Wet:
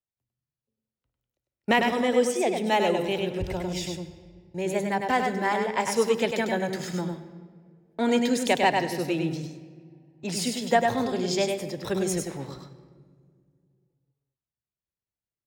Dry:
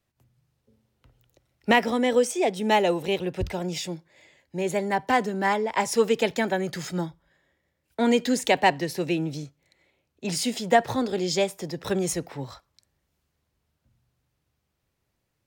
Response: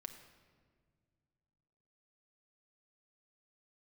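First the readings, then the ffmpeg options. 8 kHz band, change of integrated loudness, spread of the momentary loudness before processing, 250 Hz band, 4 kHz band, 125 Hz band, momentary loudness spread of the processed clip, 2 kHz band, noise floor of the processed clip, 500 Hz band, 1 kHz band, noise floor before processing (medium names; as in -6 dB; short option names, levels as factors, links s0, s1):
-1.0 dB, -1.0 dB, 14 LU, -0.5 dB, -1.0 dB, -0.5 dB, 15 LU, -1.0 dB, under -85 dBFS, -1.0 dB, -1.0 dB, -78 dBFS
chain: -filter_complex "[0:a]agate=range=0.0891:threshold=0.00562:ratio=16:detection=peak,asplit=2[s0][s1];[1:a]atrim=start_sample=2205,adelay=100[s2];[s1][s2]afir=irnorm=-1:irlink=0,volume=1.06[s3];[s0][s3]amix=inputs=2:normalize=0,volume=0.75"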